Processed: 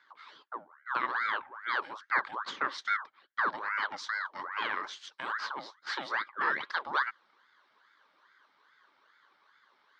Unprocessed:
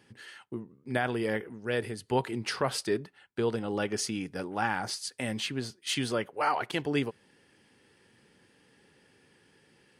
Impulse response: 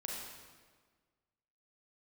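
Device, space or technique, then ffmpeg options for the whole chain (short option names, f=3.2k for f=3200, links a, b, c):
voice changer toy: -af "aeval=exprs='val(0)*sin(2*PI*1100*n/s+1100*0.65/2.4*sin(2*PI*2.4*n/s))':c=same,highpass=460,equalizer=f=490:t=q:w=4:g=-4,equalizer=f=700:t=q:w=4:g=-10,equalizer=f=1.1k:t=q:w=4:g=5,equalizer=f=1.6k:t=q:w=4:g=6,equalizer=f=2.6k:t=q:w=4:g=-10,lowpass=f=4.5k:w=0.5412,lowpass=f=4.5k:w=1.3066"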